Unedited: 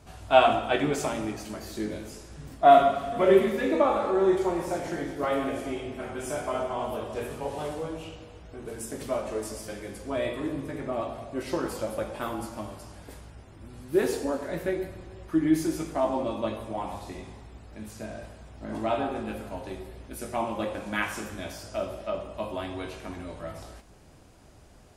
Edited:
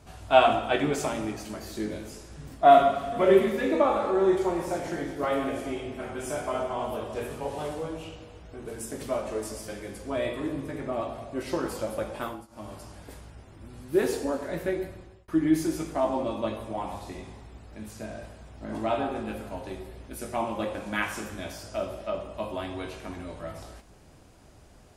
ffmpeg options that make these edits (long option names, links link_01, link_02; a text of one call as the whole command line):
ffmpeg -i in.wav -filter_complex "[0:a]asplit=4[link_01][link_02][link_03][link_04];[link_01]atrim=end=12.47,asetpts=PTS-STARTPTS,afade=type=out:start_time=12.22:duration=0.25:silence=0.0841395[link_05];[link_02]atrim=start=12.47:end=12.48,asetpts=PTS-STARTPTS,volume=-21.5dB[link_06];[link_03]atrim=start=12.48:end=15.28,asetpts=PTS-STARTPTS,afade=type=in:duration=0.25:silence=0.0841395,afade=type=out:start_time=2.27:duration=0.53:curve=qsin[link_07];[link_04]atrim=start=15.28,asetpts=PTS-STARTPTS,afade=type=in:duration=0.004:curve=hsin[link_08];[link_05][link_06][link_07][link_08]concat=n=4:v=0:a=1" out.wav